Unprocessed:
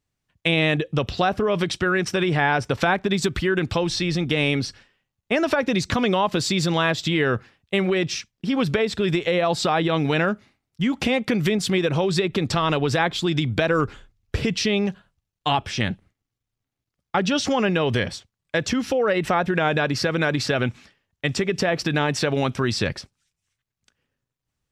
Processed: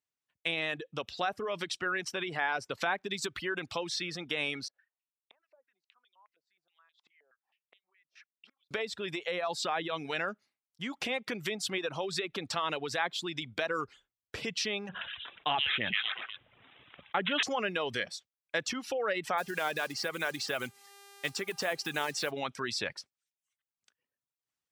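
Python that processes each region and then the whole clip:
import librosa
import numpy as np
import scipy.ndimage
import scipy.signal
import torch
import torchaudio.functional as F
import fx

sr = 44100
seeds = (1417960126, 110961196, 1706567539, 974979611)

y = fx.chain(x, sr, fx.gate_flip(shuts_db=-16.0, range_db=-28),
    fx.filter_held_bandpass(hz=9.5, low_hz=610.0, high_hz=3400.0), at=(4.68, 8.71))
y = fx.chain(y, sr, fx.echo_stepped(ms=120, hz=2700.0, octaves=0.7, feedback_pct=70, wet_db=-1.0),
    fx.resample_bad(factor=6, down='none', up='filtered'),
    fx.env_flatten(amount_pct=70), at=(14.89, 17.43))
y = fx.block_float(y, sr, bits=5, at=(19.37, 22.3), fade=0.02)
y = fx.dmg_buzz(y, sr, base_hz=400.0, harmonics=34, level_db=-43.0, tilt_db=-4, odd_only=False, at=(19.37, 22.3), fade=0.02)
y = fx.dereverb_blind(y, sr, rt60_s=0.67)
y = fx.highpass(y, sr, hz=720.0, slope=6)
y = fx.rider(y, sr, range_db=10, speed_s=2.0)
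y = F.gain(torch.from_numpy(y), -7.5).numpy()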